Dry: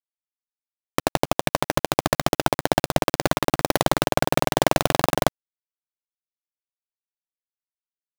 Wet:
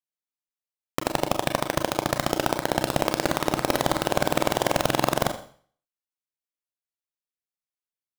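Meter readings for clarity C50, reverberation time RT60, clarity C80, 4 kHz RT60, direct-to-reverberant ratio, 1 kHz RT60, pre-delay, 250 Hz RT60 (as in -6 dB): 12.0 dB, 0.50 s, 14.5 dB, 0.50 s, 6.0 dB, 0.50 s, 31 ms, 0.45 s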